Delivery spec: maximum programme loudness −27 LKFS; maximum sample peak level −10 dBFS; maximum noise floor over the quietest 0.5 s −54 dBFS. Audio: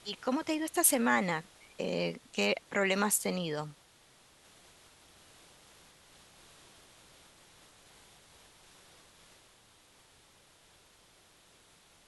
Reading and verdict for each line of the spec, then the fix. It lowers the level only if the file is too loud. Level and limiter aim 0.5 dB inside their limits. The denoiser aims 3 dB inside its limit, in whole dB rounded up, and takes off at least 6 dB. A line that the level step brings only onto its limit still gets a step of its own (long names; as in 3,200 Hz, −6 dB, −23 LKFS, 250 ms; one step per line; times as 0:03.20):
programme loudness −30.5 LKFS: in spec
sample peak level −9.5 dBFS: out of spec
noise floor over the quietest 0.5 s −62 dBFS: in spec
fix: brickwall limiter −10.5 dBFS